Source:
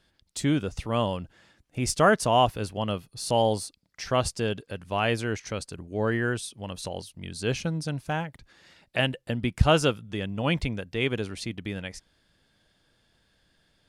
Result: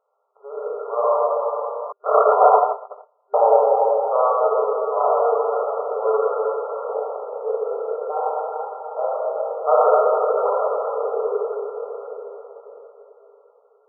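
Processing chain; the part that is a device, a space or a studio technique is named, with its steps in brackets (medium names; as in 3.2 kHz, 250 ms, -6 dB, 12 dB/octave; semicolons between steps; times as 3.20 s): swimming-pool hall (reverberation RT60 3.9 s, pre-delay 14 ms, DRR -9.5 dB; treble shelf 3.1 kHz -3.5 dB); 1.92–3.34 s: gate -12 dBFS, range -45 dB; FFT band-pass 400–1400 Hz; trim +2 dB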